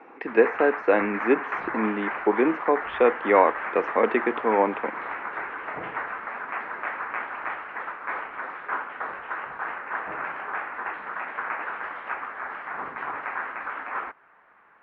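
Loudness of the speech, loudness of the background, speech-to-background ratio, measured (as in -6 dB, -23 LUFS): -23.5 LUFS, -32.0 LUFS, 8.5 dB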